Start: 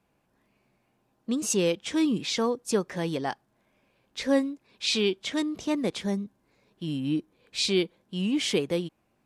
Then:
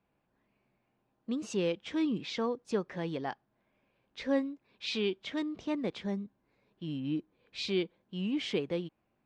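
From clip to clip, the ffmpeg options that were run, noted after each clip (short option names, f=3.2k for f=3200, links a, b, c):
-af "lowpass=3.6k,volume=-6dB"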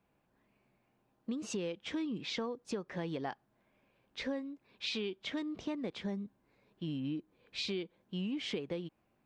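-af "acompressor=threshold=-36dB:ratio=10,volume=2dB"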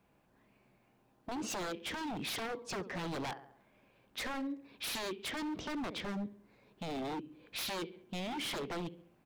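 -filter_complex "[0:a]asplit=2[a][b];[b]adelay=68,lowpass=f=3.7k:p=1,volume=-17dB,asplit=2[c][d];[d]adelay=68,lowpass=f=3.7k:p=1,volume=0.52,asplit=2[e][f];[f]adelay=68,lowpass=f=3.7k:p=1,volume=0.52,asplit=2[g][h];[h]adelay=68,lowpass=f=3.7k:p=1,volume=0.52,asplit=2[i][j];[j]adelay=68,lowpass=f=3.7k:p=1,volume=0.52[k];[a][c][e][g][i][k]amix=inputs=6:normalize=0,aeval=exprs='0.0119*(abs(mod(val(0)/0.0119+3,4)-2)-1)':c=same,volume=5dB"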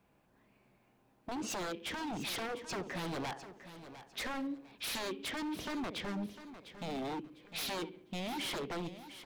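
-af "aecho=1:1:702|1404|2106:0.224|0.0627|0.0176"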